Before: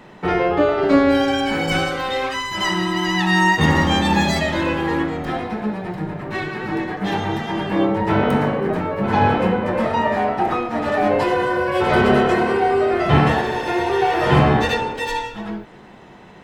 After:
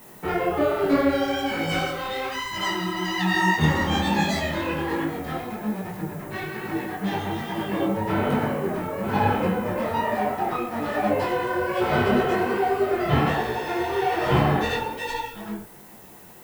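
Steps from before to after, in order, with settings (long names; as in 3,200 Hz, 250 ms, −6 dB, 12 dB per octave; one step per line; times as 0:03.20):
background noise violet −43 dBFS
micro pitch shift up and down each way 41 cents
level −2 dB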